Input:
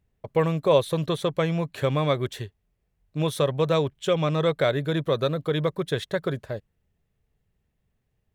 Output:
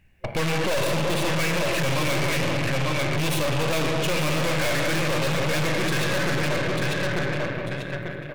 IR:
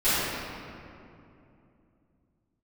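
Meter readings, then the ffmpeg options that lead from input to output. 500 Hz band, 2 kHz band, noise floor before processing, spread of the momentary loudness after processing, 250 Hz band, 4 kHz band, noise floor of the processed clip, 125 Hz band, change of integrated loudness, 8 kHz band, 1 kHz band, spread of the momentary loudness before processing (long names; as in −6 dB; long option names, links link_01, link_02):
−2.0 dB, +11.0 dB, −75 dBFS, 4 LU, +1.5 dB, +6.5 dB, −35 dBFS, +1.5 dB, +1.0 dB, +13.0 dB, +3.0 dB, 10 LU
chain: -filter_complex "[0:a]asplit=2[link_01][link_02];[1:a]atrim=start_sample=2205[link_03];[link_02][link_03]afir=irnorm=-1:irlink=0,volume=-19dB[link_04];[link_01][link_04]amix=inputs=2:normalize=0,acontrast=43,superequalizer=7b=0.562:11b=2.82:12b=3.98,asplit=2[link_05][link_06];[link_06]aecho=0:1:893|1786|2679:0.447|0.112|0.0279[link_07];[link_05][link_07]amix=inputs=2:normalize=0,aeval=exprs='(tanh(39.8*val(0)+0.8)-tanh(0.8))/39.8':channel_layout=same,volume=8.5dB"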